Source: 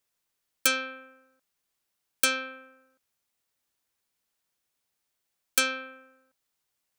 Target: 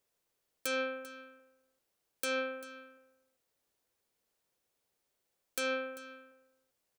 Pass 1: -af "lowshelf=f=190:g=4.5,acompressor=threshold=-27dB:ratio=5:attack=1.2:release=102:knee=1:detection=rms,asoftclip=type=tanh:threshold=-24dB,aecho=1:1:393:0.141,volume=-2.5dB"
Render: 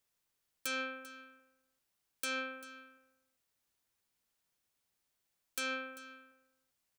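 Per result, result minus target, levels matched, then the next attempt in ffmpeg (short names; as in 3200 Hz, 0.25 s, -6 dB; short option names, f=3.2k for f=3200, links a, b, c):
soft clip: distortion +15 dB; 500 Hz band -7.0 dB
-af "lowshelf=f=190:g=4.5,acompressor=threshold=-27dB:ratio=5:attack=1.2:release=102:knee=1:detection=rms,asoftclip=type=tanh:threshold=-14.5dB,aecho=1:1:393:0.141,volume=-2.5dB"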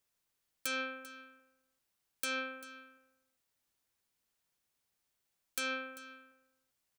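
500 Hz band -7.5 dB
-af "lowshelf=f=190:g=4.5,acompressor=threshold=-27dB:ratio=5:attack=1.2:release=102:knee=1:detection=rms,equalizer=f=480:w=1.1:g=9.5,asoftclip=type=tanh:threshold=-14.5dB,aecho=1:1:393:0.141,volume=-2.5dB"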